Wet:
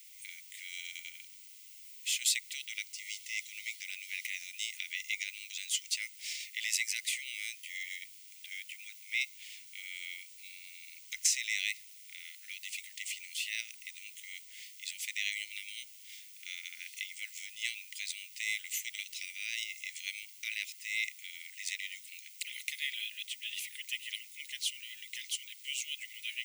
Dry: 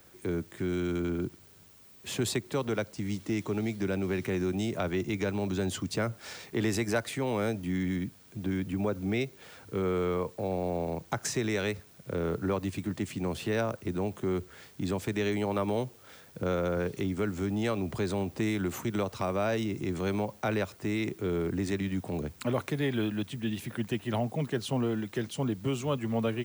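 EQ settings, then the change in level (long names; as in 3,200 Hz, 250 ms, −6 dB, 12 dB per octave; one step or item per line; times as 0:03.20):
Chebyshev high-pass with heavy ripple 2,000 Hz, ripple 3 dB
+7.0 dB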